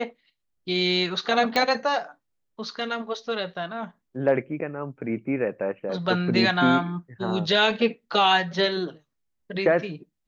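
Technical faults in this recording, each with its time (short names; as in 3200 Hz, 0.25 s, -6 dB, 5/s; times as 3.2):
1.56 pop -10 dBFS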